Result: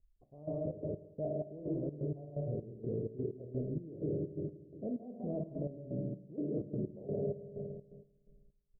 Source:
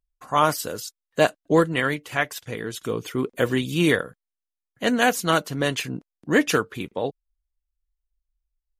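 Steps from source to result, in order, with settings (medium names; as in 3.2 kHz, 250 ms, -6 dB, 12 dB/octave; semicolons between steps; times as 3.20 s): bass shelf 180 Hz +11.5 dB; reverberation RT60 1.4 s, pre-delay 3 ms, DRR 5 dB; reverse; compression 6:1, threshold -31 dBFS, peak gain reduction 19.5 dB; reverse; Chebyshev low-pass 650 Hz, order 5; in parallel at +3 dB: peak limiter -34 dBFS, peak gain reduction 11.5 dB; on the sum: delay 163 ms -4.5 dB; trance gate "xx..xx.x.." 127 bpm -12 dB; trim -7.5 dB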